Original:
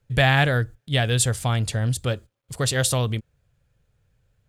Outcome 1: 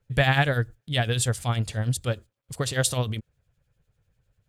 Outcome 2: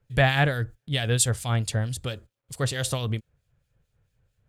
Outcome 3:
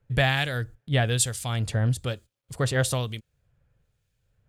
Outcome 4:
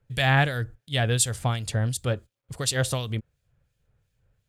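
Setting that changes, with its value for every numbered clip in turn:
harmonic tremolo, rate: 10 Hz, 4.5 Hz, 1.1 Hz, 2.8 Hz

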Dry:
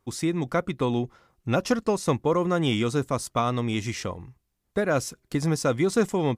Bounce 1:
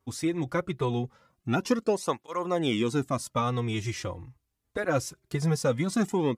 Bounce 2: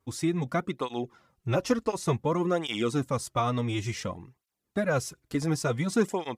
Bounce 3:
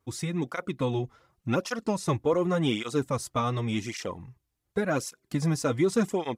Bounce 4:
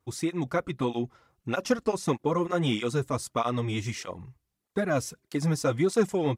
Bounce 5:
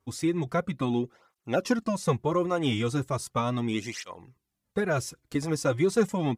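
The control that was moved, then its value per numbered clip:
cancelling through-zero flanger, nulls at: 0.22 Hz, 0.56 Hz, 0.88 Hz, 1.6 Hz, 0.37 Hz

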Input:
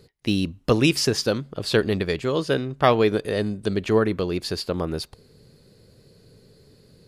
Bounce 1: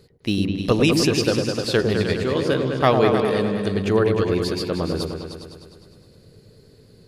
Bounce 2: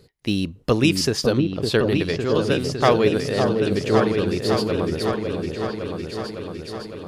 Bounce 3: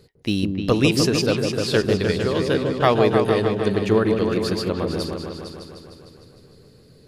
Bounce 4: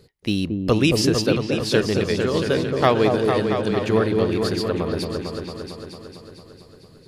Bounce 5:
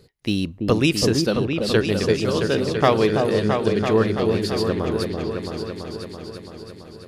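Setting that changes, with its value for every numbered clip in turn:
delay with an opening low-pass, time: 102 ms, 557 ms, 152 ms, 226 ms, 334 ms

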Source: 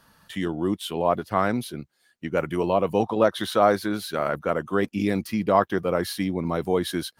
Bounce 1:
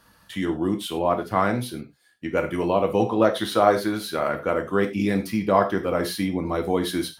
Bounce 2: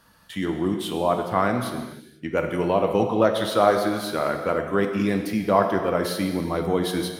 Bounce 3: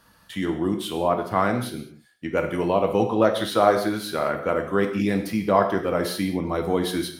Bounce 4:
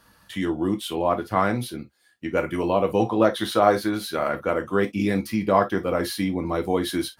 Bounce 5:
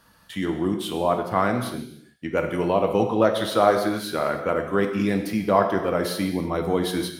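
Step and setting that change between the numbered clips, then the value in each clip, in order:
gated-style reverb, gate: 130 ms, 520 ms, 240 ms, 80 ms, 350 ms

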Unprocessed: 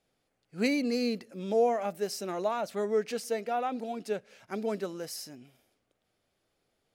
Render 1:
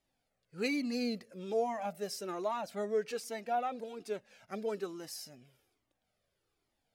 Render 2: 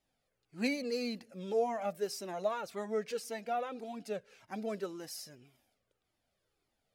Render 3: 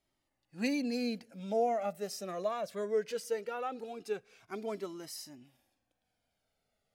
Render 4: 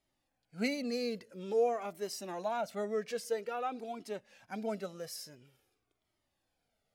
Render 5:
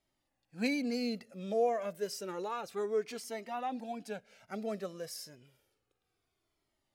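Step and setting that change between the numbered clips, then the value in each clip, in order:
Shepard-style flanger, rate: 1.2 Hz, 1.8 Hz, 0.2 Hz, 0.49 Hz, 0.3 Hz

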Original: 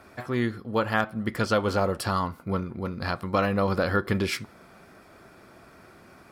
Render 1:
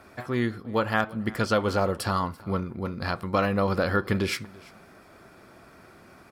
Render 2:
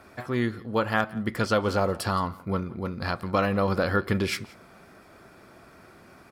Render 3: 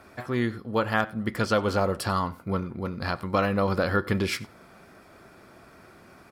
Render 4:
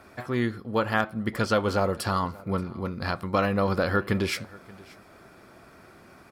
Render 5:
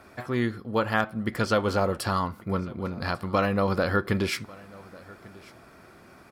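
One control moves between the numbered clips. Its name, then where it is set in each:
delay, time: 337 ms, 173 ms, 94 ms, 579 ms, 1145 ms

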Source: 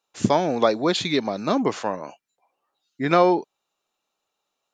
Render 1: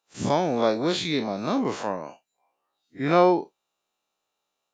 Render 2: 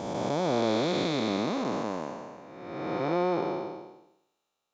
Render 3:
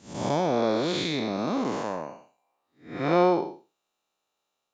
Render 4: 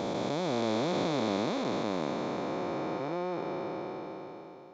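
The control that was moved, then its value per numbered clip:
spectral blur, width: 81 ms, 674 ms, 234 ms, 1730 ms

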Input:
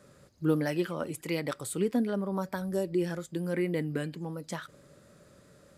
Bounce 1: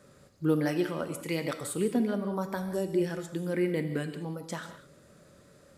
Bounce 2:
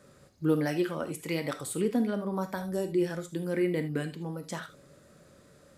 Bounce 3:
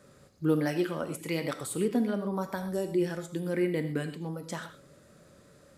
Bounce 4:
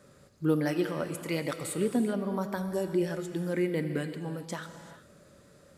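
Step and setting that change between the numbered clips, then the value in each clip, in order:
gated-style reverb, gate: 220 ms, 100 ms, 150 ms, 420 ms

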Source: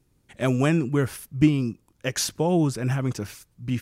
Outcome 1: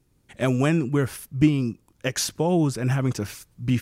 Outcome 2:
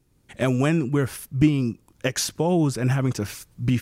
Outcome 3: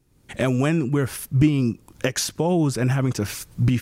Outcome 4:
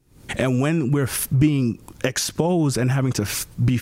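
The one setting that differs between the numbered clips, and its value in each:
recorder AGC, rising by: 5.4 dB/s, 14 dB/s, 36 dB/s, 91 dB/s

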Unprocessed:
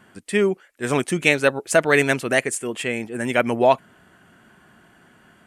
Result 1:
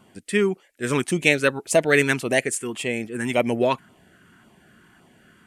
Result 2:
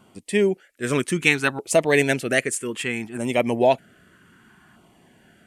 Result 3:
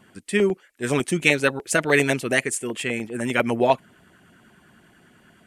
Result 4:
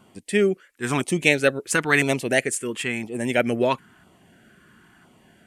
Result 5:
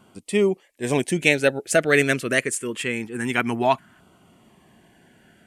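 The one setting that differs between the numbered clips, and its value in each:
LFO notch, rate: 1.8 Hz, 0.63 Hz, 10 Hz, 0.99 Hz, 0.25 Hz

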